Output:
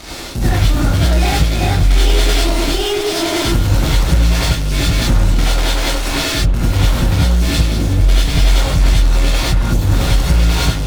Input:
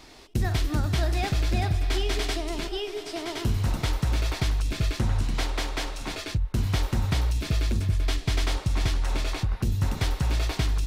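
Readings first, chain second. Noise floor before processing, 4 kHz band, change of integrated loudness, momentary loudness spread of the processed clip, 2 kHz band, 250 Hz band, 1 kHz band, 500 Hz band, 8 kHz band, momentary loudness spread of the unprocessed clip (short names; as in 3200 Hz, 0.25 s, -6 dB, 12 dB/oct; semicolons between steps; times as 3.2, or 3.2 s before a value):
-41 dBFS, +14.0 dB, +12.5 dB, 3 LU, +12.5 dB, +13.5 dB, +12.5 dB, +13.0 dB, +15.0 dB, 5 LU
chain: in parallel at -10.5 dB: fuzz box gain 46 dB, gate -50 dBFS; on the sum: non-linear reverb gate 0.12 s rising, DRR -7 dB; gain -2.5 dB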